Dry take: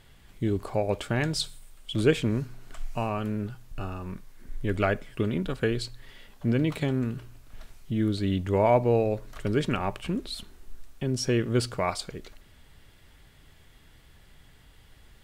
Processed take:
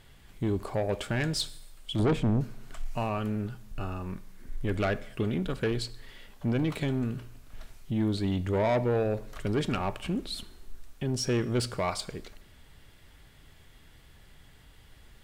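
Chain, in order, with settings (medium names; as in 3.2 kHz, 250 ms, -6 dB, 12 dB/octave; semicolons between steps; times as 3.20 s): 1.99–2.41 s: tilt shelf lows +8 dB, about 790 Hz; saturation -21 dBFS, distortion -9 dB; Schroeder reverb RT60 0.77 s, combs from 29 ms, DRR 18 dB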